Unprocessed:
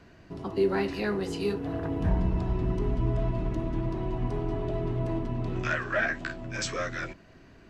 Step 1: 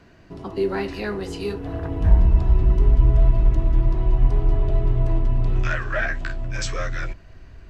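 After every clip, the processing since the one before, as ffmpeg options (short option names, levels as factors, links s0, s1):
-af "asubboost=boost=8:cutoff=76,volume=1.33"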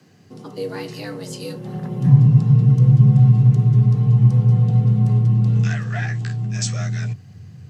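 -af "afreqshift=86,bass=f=250:g=9,treble=f=4000:g=15,volume=0.501"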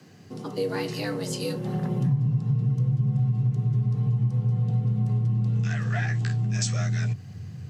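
-af "acompressor=threshold=0.0631:ratio=5,volume=1.19"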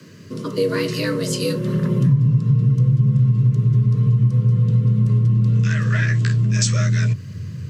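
-af "asuperstop=centerf=780:order=12:qfactor=2.9,volume=2.51"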